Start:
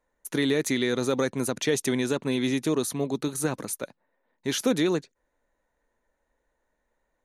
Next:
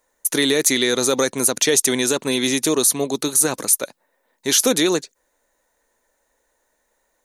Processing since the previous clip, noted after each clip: tone controls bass -9 dB, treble +12 dB; in parallel at +3 dB: limiter -14.5 dBFS, peak gain reduction 8 dB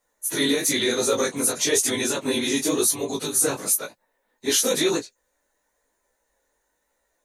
phase scrambler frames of 50 ms; chorus 0.99 Hz, delay 17.5 ms, depth 4.2 ms; gain -1 dB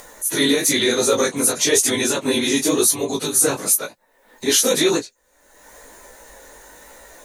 upward compressor, threshold -28 dBFS; gain +4.5 dB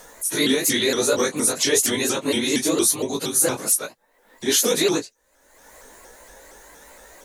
shaped vibrato saw up 4.3 Hz, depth 160 cents; gain -2.5 dB

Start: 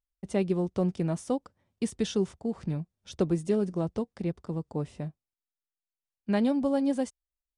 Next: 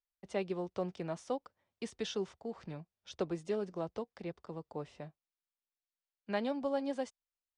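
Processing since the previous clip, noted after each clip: three-band isolator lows -12 dB, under 430 Hz, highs -21 dB, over 6500 Hz; gain -3 dB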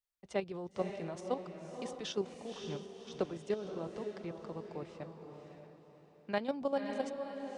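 level quantiser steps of 11 dB; diffused feedback echo 0.548 s, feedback 40%, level -6 dB; gain +3 dB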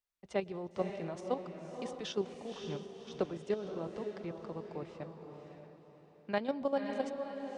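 high shelf 6700 Hz -7 dB; on a send at -22 dB: reverb RT60 1.5 s, pre-delay 0.104 s; on the sum: gain +1 dB

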